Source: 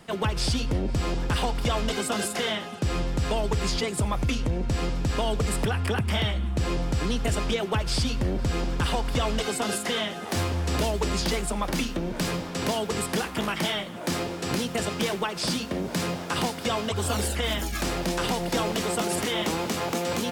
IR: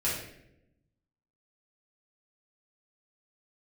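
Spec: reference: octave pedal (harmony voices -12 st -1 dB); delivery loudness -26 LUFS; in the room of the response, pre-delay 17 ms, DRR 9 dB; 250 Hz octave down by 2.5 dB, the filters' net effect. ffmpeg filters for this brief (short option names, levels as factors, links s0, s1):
-filter_complex "[0:a]equalizer=f=250:t=o:g=-3.5,asplit=2[s0][s1];[1:a]atrim=start_sample=2205,adelay=17[s2];[s1][s2]afir=irnorm=-1:irlink=0,volume=0.141[s3];[s0][s3]amix=inputs=2:normalize=0,asplit=2[s4][s5];[s5]asetrate=22050,aresample=44100,atempo=2,volume=0.891[s6];[s4][s6]amix=inputs=2:normalize=0,volume=0.944"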